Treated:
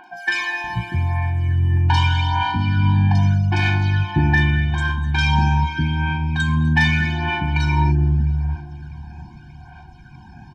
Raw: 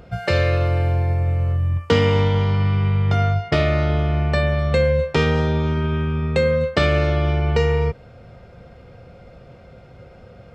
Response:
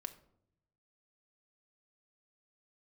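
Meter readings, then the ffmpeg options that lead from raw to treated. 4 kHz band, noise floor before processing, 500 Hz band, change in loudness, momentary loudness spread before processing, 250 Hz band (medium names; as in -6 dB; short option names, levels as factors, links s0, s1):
+2.5 dB, -45 dBFS, -17.5 dB, +0.5 dB, 4 LU, +1.5 dB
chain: -filter_complex "[0:a]aphaser=in_gain=1:out_gain=1:delay=1.2:decay=0.62:speed=0.82:type=sinusoidal,acrossover=split=380|3300[s0][s1][s2];[s2]adelay=40[s3];[s0]adelay=640[s4];[s4][s1][s3]amix=inputs=3:normalize=0,asplit=2[s5][s6];[s6]highpass=f=720:p=1,volume=5.01,asoftclip=type=tanh:threshold=0.75[s7];[s5][s7]amix=inputs=2:normalize=0,lowpass=f=4600:p=1,volume=0.501,asplit=2[s8][s9];[s9]adelay=706,lowpass=f=860:p=1,volume=0.126,asplit=2[s10][s11];[s11]adelay=706,lowpass=f=860:p=1,volume=0.41,asplit=2[s12][s13];[s13]adelay=706,lowpass=f=860:p=1,volume=0.41[s14];[s10][s12][s14]amix=inputs=3:normalize=0[s15];[s8][s15]amix=inputs=2:normalize=0,afftfilt=real='re*eq(mod(floor(b*sr/1024/360),2),0)':imag='im*eq(mod(floor(b*sr/1024/360),2),0)':win_size=1024:overlap=0.75,volume=0.891"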